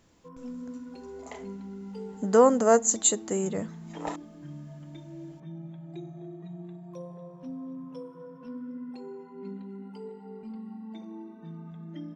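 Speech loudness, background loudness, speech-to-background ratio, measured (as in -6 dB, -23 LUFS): -23.5 LUFS, -42.0 LUFS, 18.5 dB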